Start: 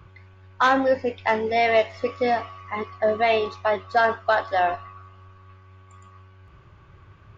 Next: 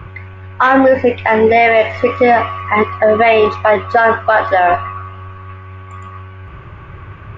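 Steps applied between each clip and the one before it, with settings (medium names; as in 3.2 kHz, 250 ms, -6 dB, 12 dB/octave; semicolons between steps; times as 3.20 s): resonant high shelf 3.3 kHz -9.5 dB, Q 1.5; loudness maximiser +18 dB; trim -1 dB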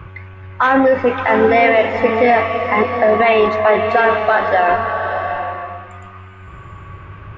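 swelling reverb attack 760 ms, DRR 5 dB; trim -3 dB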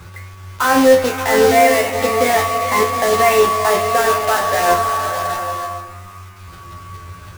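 block-companded coder 3-bit; feedback comb 87 Hz, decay 0.28 s, harmonics all, mix 90%; trim +5.5 dB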